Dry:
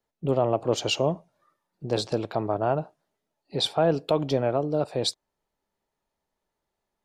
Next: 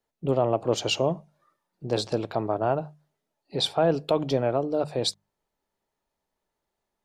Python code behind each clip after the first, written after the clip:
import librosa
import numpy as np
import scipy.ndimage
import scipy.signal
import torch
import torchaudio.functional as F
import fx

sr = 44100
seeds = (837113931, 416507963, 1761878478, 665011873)

y = fx.hum_notches(x, sr, base_hz=50, count=4)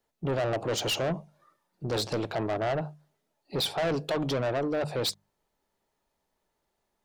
y = 10.0 ** (-28.0 / 20.0) * np.tanh(x / 10.0 ** (-28.0 / 20.0))
y = F.gain(torch.from_numpy(y), 3.5).numpy()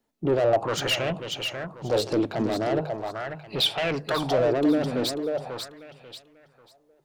y = fx.echo_feedback(x, sr, ms=541, feedback_pct=29, wet_db=-7)
y = fx.bell_lfo(y, sr, hz=0.41, low_hz=240.0, high_hz=3000.0, db=12)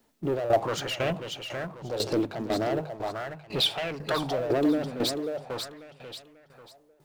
y = fx.law_mismatch(x, sr, coded='mu')
y = fx.tremolo_shape(y, sr, shape='saw_down', hz=2.0, depth_pct=75)